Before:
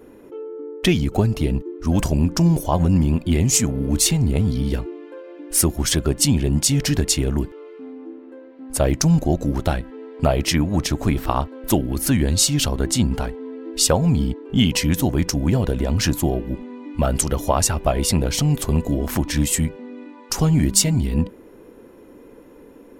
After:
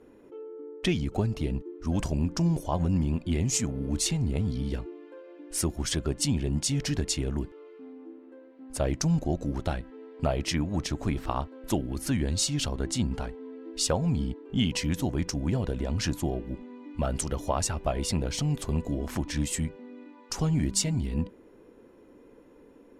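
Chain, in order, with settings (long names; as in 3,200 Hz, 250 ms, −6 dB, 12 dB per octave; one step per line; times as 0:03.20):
low-pass filter 8,800 Hz 12 dB per octave
level −9 dB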